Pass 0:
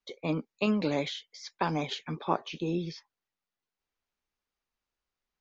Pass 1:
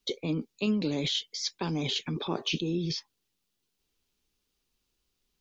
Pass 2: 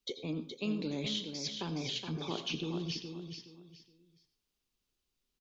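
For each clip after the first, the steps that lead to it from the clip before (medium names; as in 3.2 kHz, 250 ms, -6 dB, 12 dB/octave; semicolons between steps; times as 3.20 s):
high-order bell 1.1 kHz -10 dB 2.3 oct; in parallel at +2 dB: compressor with a negative ratio -40 dBFS, ratio -0.5
feedback delay 420 ms, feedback 27%, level -7 dB; on a send at -12 dB: reverberation RT60 0.30 s, pre-delay 76 ms; on the sum: trim -7 dB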